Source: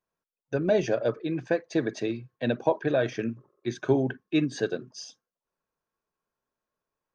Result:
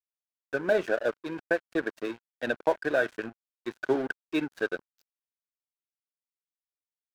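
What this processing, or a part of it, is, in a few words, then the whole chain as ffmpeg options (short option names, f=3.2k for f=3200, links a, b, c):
pocket radio on a weak battery: -af "highpass=300,lowpass=3.9k,aeval=exprs='sgn(val(0))*max(abs(val(0))-0.0112,0)':c=same,equalizer=f=1.5k:t=o:w=0.32:g=9.5"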